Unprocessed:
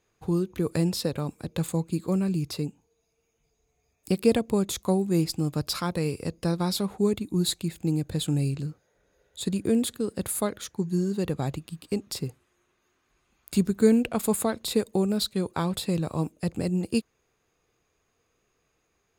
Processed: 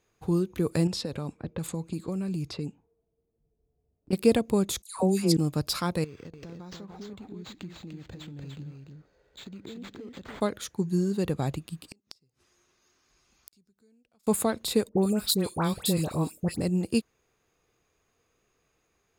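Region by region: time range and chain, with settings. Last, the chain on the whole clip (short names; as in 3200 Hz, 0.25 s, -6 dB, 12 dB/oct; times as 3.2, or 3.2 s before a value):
0.87–4.13 low-pass opened by the level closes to 420 Hz, open at -24 dBFS + compressor 10:1, threshold -27 dBFS
4.82–5.37 LPF 9700 Hz + high shelf 7000 Hz +9.5 dB + dispersion lows, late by 0.15 s, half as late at 1400 Hz
6.04–10.41 compressor 10:1, threshold -39 dBFS + echo 0.295 s -4.5 dB + decimation joined by straight lines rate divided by 4×
11.88–14.27 bell 5300 Hz +13.5 dB 0.73 oct + compressor 2:1, threshold -30 dBFS + flipped gate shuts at -27 dBFS, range -36 dB
14.89–16.61 high shelf 8300 Hz +11 dB + dispersion highs, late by 86 ms, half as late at 1600 Hz
whole clip: dry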